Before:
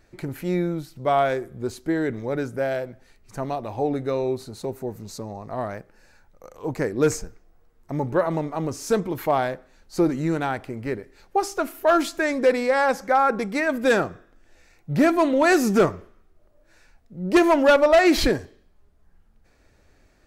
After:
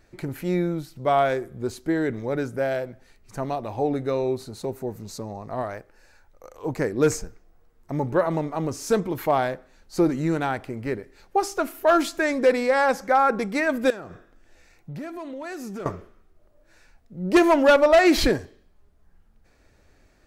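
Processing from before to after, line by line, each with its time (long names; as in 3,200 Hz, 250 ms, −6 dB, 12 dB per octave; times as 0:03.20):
0:05.62–0:06.66: parametric band 170 Hz −9.5 dB 0.92 octaves
0:13.90–0:15.86: downward compressor 5 to 1, threshold −34 dBFS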